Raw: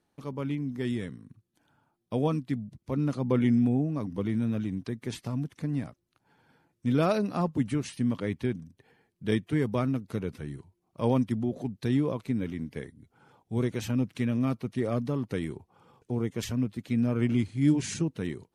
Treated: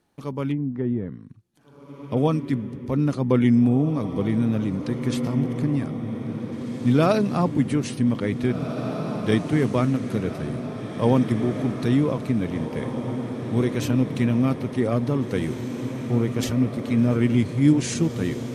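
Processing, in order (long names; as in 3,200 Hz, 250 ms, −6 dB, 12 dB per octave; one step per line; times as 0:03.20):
0:00.51–0:02.17: treble cut that deepens with the level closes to 800 Hz, closed at −28 dBFS
feedback delay with all-pass diffusion 1,896 ms, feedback 61%, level −8 dB
level +6 dB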